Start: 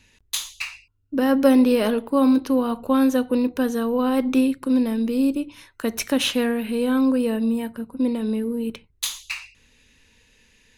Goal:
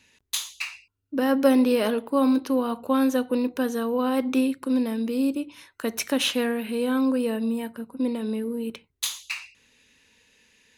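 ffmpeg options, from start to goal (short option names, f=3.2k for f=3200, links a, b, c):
-af "highpass=f=220:p=1,volume=-1.5dB"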